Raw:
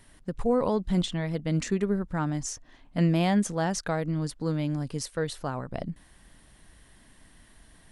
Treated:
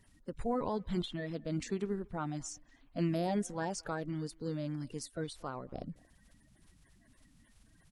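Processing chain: bin magnitudes rounded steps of 30 dB; speakerphone echo 0.23 s, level -25 dB; gain -8.5 dB

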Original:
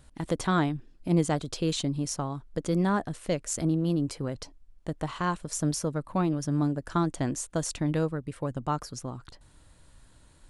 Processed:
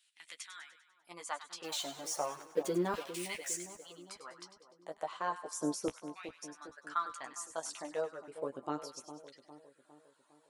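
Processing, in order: 1.64–3.56 zero-crossing step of -29.5 dBFS; LFO high-pass saw down 0.34 Hz 330–2900 Hz; reverb removal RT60 1.5 s; 0.42–1.09 pre-emphasis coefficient 0.8; flange 0.76 Hz, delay 9.9 ms, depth 5.5 ms, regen -16%; low shelf 150 Hz +3 dB; split-band echo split 1000 Hz, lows 0.406 s, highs 99 ms, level -11 dB; gain -5 dB

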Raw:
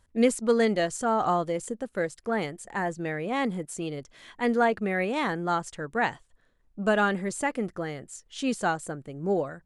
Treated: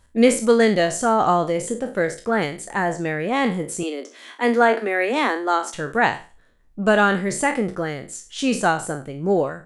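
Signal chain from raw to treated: spectral trails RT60 0.35 s; 3.83–5.74 steep high-pass 230 Hz 72 dB/oct; gain +6.5 dB

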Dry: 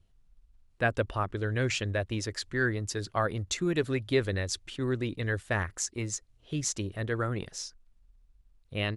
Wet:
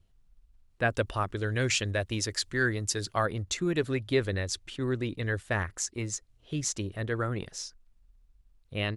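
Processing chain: 0.91–3.26 high shelf 3500 Hz +8.5 dB

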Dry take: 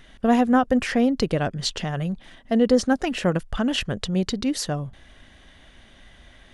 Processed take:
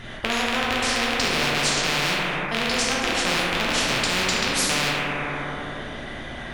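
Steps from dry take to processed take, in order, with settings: rattling part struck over -34 dBFS, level -11 dBFS; high shelf 4300 Hz -7.5 dB; plate-style reverb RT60 2.2 s, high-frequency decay 0.3×, DRR -6.5 dB; spectral compressor 4:1; gain -7.5 dB

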